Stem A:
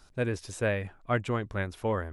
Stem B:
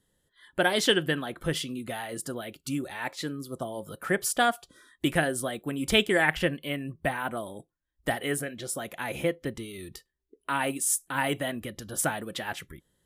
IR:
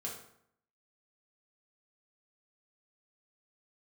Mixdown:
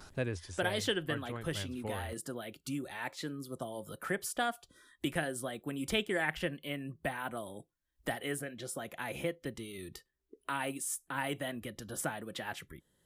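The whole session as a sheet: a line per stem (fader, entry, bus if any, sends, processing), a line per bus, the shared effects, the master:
-1.5 dB, 0.00 s, no send, peaking EQ 86 Hz +12 dB 0.34 oct; vibrato 1.5 Hz 70 cents; auto duck -12 dB, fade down 0.75 s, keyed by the second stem
-8.0 dB, 0.00 s, no send, none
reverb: none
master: three bands compressed up and down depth 40%

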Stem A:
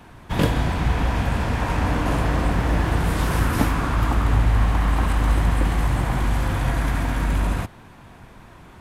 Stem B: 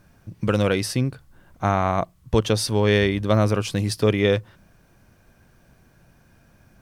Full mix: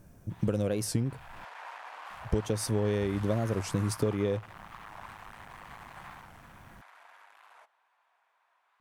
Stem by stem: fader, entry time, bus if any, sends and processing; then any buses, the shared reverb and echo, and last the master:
0.93 s -23.5 dB -> 1.43 s -12 dB -> 6.06 s -12 dB -> 6.53 s -20 dB, 0.00 s, no send, overload inside the chain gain 21 dB; high-pass 750 Hz 24 dB/octave; treble shelf 3.8 kHz -11.5 dB
+0.5 dB, 0.00 s, muted 1.45–2.11 s, no send, compression 10:1, threshold -25 dBFS, peak gain reduction 12.5 dB; high-order bell 2.1 kHz -9.5 dB 2.8 oct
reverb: none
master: warped record 45 rpm, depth 160 cents

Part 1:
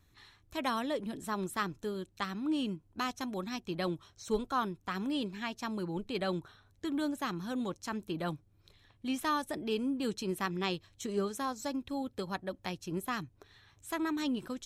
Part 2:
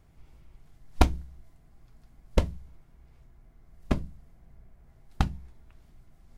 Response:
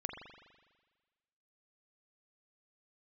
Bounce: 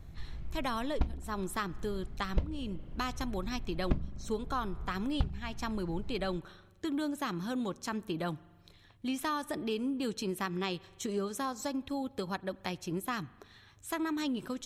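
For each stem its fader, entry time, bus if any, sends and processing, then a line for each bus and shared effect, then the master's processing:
+2.0 dB, 0.00 s, send -18.5 dB, none
+2.0 dB, 0.00 s, send -16.5 dB, bass shelf 320 Hz +8.5 dB; level rider gain up to 6 dB; low-pass 4.3 kHz 12 dB/octave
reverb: on, RT60 1.4 s, pre-delay 41 ms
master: compression 3:1, threshold -31 dBFS, peak gain reduction 18.5 dB

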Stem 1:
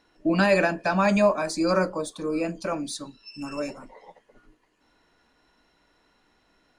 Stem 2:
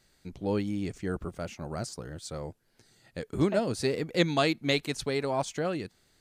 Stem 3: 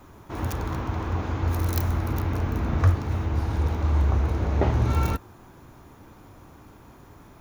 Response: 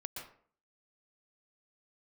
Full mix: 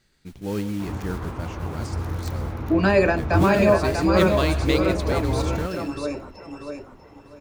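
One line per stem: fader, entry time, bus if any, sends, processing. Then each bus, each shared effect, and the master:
+1.0 dB, 2.45 s, no send, echo send -5.5 dB, peaking EQ 400 Hz +10 dB 0.26 oct
-0.5 dB, 0.00 s, send -3 dB, no echo send, peaking EQ 670 Hz -6.5 dB 0.99 oct; modulation noise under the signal 13 dB
-3.5 dB, 0.50 s, no send, echo send -18.5 dB, none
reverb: on, RT60 0.50 s, pre-delay 113 ms
echo: feedback delay 642 ms, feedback 23%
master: low-pass 4 kHz 6 dB/octave

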